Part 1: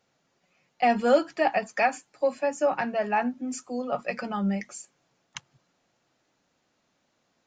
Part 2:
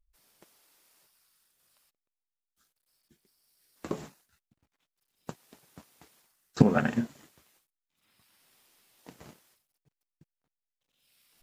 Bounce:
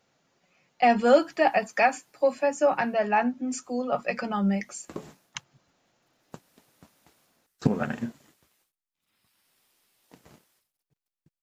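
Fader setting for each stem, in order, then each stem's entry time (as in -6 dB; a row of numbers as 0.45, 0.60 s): +2.0, -3.5 dB; 0.00, 1.05 s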